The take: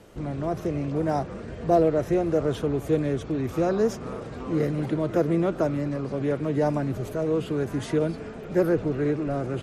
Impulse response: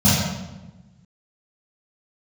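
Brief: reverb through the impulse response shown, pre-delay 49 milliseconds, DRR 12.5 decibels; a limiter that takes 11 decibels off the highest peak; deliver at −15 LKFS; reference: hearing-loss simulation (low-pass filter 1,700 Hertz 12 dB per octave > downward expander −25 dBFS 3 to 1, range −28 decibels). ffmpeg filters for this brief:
-filter_complex "[0:a]alimiter=limit=-19.5dB:level=0:latency=1,asplit=2[link_01][link_02];[1:a]atrim=start_sample=2205,adelay=49[link_03];[link_02][link_03]afir=irnorm=-1:irlink=0,volume=-33dB[link_04];[link_01][link_04]amix=inputs=2:normalize=0,lowpass=1700,agate=range=-28dB:threshold=-25dB:ratio=3,volume=12.5dB"

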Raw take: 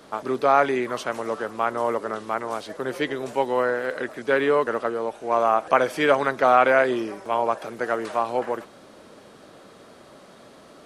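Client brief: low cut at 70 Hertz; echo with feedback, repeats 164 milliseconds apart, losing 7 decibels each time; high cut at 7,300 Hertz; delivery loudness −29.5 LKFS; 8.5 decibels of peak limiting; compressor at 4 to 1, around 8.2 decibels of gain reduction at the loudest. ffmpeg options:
ffmpeg -i in.wav -af "highpass=70,lowpass=7300,acompressor=threshold=-22dB:ratio=4,alimiter=limit=-17dB:level=0:latency=1,aecho=1:1:164|328|492|656|820:0.447|0.201|0.0905|0.0407|0.0183,volume=-1dB" out.wav

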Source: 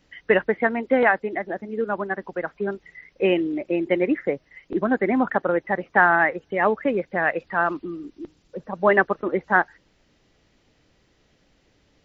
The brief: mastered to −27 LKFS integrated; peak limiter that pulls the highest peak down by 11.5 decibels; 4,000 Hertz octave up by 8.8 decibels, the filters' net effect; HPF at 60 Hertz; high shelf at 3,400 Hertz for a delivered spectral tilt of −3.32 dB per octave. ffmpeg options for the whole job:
ffmpeg -i in.wav -af "highpass=60,highshelf=frequency=3400:gain=8,equalizer=frequency=4000:width_type=o:gain=9,volume=-1.5dB,alimiter=limit=-14.5dB:level=0:latency=1" out.wav

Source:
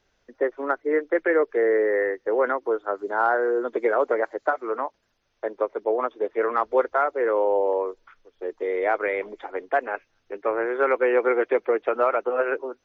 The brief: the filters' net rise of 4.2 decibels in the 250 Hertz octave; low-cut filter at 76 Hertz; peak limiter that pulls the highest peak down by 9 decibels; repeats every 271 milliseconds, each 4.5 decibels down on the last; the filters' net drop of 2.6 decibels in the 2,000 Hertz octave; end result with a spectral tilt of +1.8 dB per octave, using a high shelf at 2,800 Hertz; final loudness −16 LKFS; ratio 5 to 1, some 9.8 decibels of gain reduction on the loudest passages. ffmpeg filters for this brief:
ffmpeg -i in.wav -af "highpass=76,equalizer=frequency=250:width_type=o:gain=7,equalizer=frequency=2000:width_type=o:gain=-7,highshelf=frequency=2800:gain=9,acompressor=threshold=-26dB:ratio=5,alimiter=limit=-24dB:level=0:latency=1,aecho=1:1:271|542|813|1084|1355|1626|1897|2168|2439:0.596|0.357|0.214|0.129|0.0772|0.0463|0.0278|0.0167|0.01,volume=16dB" out.wav

